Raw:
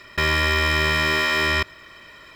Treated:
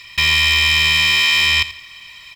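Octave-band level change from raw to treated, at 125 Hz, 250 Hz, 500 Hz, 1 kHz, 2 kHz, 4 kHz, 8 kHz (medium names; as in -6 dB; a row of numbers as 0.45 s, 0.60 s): -1.5 dB, -8.0 dB, -13.5 dB, -3.0 dB, +5.5 dB, +11.5 dB, +9.5 dB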